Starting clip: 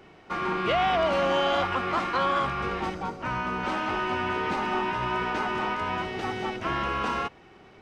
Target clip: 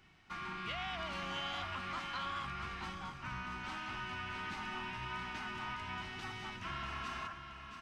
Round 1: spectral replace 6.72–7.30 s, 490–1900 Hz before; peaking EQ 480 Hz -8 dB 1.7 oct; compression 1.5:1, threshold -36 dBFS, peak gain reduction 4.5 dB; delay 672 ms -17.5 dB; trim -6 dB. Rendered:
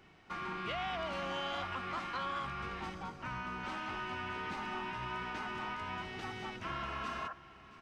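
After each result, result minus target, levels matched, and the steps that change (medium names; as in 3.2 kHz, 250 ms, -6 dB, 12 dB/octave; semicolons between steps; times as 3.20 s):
echo-to-direct -9.5 dB; 500 Hz band +5.0 dB
change: delay 672 ms -8 dB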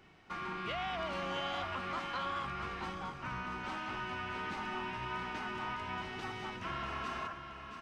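500 Hz band +5.5 dB
change: peaking EQ 480 Hz -19.5 dB 1.7 oct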